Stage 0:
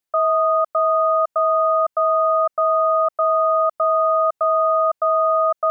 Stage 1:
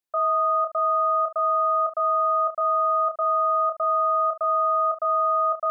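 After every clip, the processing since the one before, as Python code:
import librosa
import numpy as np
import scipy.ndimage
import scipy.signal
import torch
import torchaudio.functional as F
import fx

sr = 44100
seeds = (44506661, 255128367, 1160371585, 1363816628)

y = fx.room_early_taps(x, sr, ms=(29, 71), db=(-6.5, -14.0))
y = F.gain(torch.from_numpy(y), -6.5).numpy()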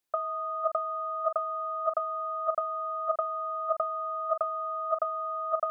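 y = fx.over_compress(x, sr, threshold_db=-27.0, ratio=-0.5)
y = F.gain(torch.from_numpy(y), -2.0).numpy()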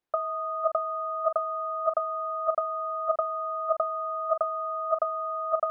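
y = fx.lowpass(x, sr, hz=1200.0, slope=6)
y = F.gain(torch.from_numpy(y), 4.5).numpy()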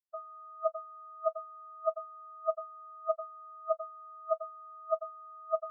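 y = fx.spectral_expand(x, sr, expansion=4.0)
y = F.gain(torch.from_numpy(y), -4.5).numpy()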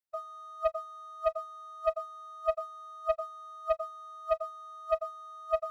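y = fx.leveller(x, sr, passes=1)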